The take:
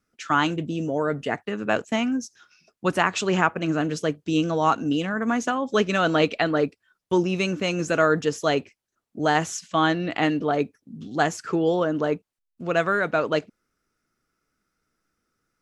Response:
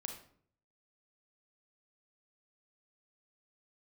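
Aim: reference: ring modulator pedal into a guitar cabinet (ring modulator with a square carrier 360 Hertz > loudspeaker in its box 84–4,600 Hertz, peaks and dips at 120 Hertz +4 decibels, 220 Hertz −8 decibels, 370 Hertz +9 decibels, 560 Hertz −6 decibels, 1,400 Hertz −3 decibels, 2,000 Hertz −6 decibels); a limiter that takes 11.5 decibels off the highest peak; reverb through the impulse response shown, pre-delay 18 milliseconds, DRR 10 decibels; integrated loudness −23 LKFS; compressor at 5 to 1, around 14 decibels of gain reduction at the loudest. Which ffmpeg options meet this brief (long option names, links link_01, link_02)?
-filter_complex "[0:a]acompressor=threshold=-32dB:ratio=5,alimiter=level_in=4dB:limit=-24dB:level=0:latency=1,volume=-4dB,asplit=2[link_01][link_02];[1:a]atrim=start_sample=2205,adelay=18[link_03];[link_02][link_03]afir=irnorm=-1:irlink=0,volume=-8dB[link_04];[link_01][link_04]amix=inputs=2:normalize=0,aeval=exprs='val(0)*sgn(sin(2*PI*360*n/s))':channel_layout=same,highpass=84,equalizer=frequency=120:width_type=q:width=4:gain=4,equalizer=frequency=220:width_type=q:width=4:gain=-8,equalizer=frequency=370:width_type=q:width=4:gain=9,equalizer=frequency=560:width_type=q:width=4:gain=-6,equalizer=frequency=1400:width_type=q:width=4:gain=-3,equalizer=frequency=2000:width_type=q:width=4:gain=-6,lowpass=frequency=4600:width=0.5412,lowpass=frequency=4600:width=1.3066,volume=17dB"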